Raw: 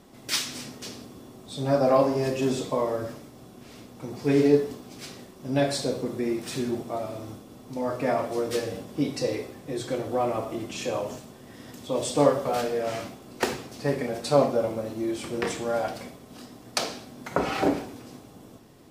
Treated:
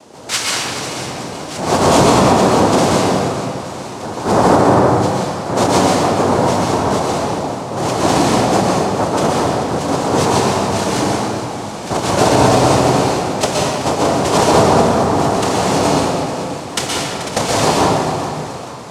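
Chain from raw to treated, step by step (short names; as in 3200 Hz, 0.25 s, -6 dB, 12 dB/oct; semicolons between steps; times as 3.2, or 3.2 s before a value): in parallel at -2.5 dB: compressor, threshold -37 dBFS, peak gain reduction 21.5 dB; on the sum: noise vocoder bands 2; split-band echo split 760 Hz, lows 0.11 s, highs 0.434 s, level -12.5 dB; reverb RT60 2.1 s, pre-delay 0.114 s, DRR -4 dB; maximiser +6.5 dB; MP3 224 kbps 48000 Hz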